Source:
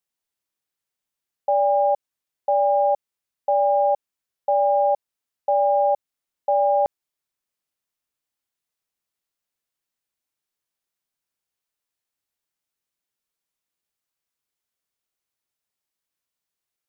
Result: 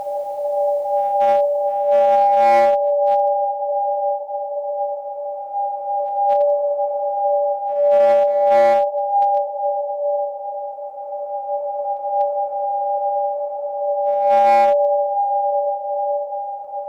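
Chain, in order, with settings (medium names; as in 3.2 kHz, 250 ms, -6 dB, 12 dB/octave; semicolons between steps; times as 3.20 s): upward compressor, threshold -35 dBFS; Paulstretch 5.8×, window 1.00 s, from 1.33 s; one-sided clip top -13.5 dBFS, bottom -11 dBFS; pre-echo 243 ms -17 dB; trim +3 dB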